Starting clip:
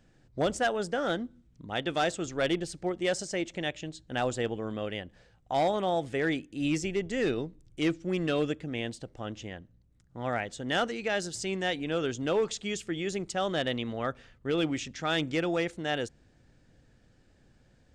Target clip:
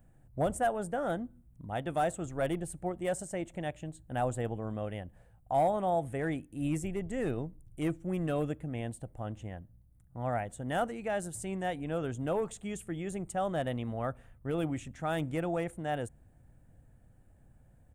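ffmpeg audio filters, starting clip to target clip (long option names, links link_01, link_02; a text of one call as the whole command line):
ffmpeg -i in.wav -af "firequalizer=gain_entry='entry(100,0);entry(210,-6);entry(400,-11);entry(680,-3);entry(1300,-10);entry(4900,-26);entry(9700,5)':delay=0.05:min_phase=1,volume=4dB" out.wav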